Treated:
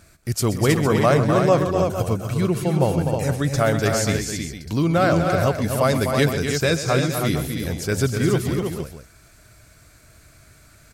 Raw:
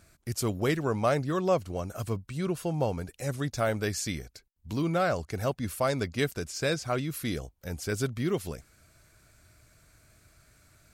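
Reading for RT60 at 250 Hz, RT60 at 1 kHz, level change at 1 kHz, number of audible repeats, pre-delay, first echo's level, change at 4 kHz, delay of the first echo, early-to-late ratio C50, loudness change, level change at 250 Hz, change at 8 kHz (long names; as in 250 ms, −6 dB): no reverb audible, no reverb audible, +9.5 dB, 4, no reverb audible, −13.0 dB, +9.5 dB, 127 ms, no reverb audible, +10.0 dB, +10.5 dB, +9.5 dB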